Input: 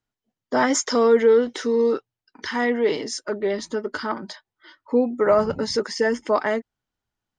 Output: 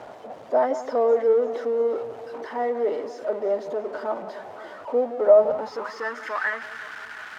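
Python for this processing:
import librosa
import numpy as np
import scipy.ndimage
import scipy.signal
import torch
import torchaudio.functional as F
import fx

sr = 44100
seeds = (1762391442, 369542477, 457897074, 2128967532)

y = x + 0.5 * 10.0 ** (-24.0 / 20.0) * np.sign(x)
y = fx.echo_alternate(y, sr, ms=171, hz=1500.0, feedback_pct=73, wet_db=-12.0)
y = fx.filter_sweep_bandpass(y, sr, from_hz=630.0, to_hz=1600.0, start_s=5.43, end_s=6.3, q=3.6)
y = F.gain(torch.from_numpy(y), 3.5).numpy()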